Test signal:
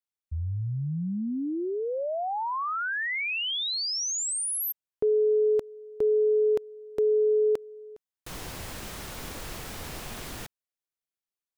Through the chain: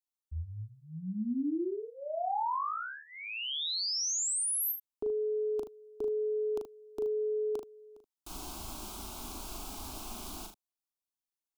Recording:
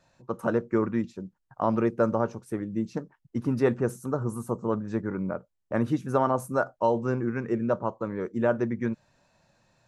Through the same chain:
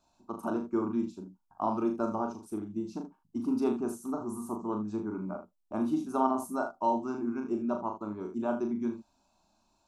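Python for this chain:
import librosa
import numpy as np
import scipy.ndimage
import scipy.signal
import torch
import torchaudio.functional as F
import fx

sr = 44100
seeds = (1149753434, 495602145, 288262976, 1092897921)

y = fx.fixed_phaser(x, sr, hz=500.0, stages=6)
y = fx.room_early_taps(y, sr, ms=(38, 76), db=(-5.0, -10.5))
y = y * librosa.db_to_amplitude(-3.0)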